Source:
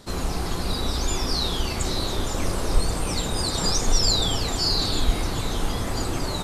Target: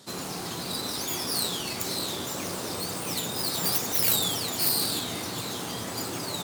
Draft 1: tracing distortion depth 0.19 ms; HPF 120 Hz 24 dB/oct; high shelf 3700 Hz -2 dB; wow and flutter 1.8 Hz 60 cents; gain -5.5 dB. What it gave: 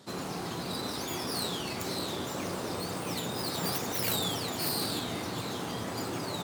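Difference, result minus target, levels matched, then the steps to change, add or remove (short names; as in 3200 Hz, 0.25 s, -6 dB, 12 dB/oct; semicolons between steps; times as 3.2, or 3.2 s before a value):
8000 Hz band -3.0 dB
change: high shelf 3700 Hz +8 dB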